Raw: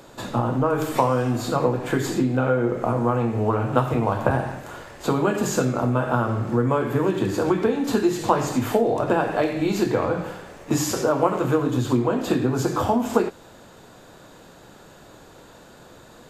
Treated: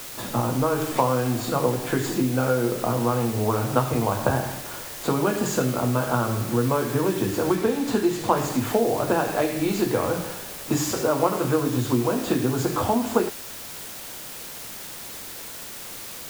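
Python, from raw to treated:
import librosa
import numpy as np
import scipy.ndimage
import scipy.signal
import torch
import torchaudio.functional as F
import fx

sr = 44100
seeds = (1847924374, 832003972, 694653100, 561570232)

y = fx.quant_dither(x, sr, seeds[0], bits=6, dither='triangular')
y = fx.high_shelf(y, sr, hz=8200.0, db=-5.0, at=(7.55, 8.37))
y = F.gain(torch.from_numpy(y), -1.5).numpy()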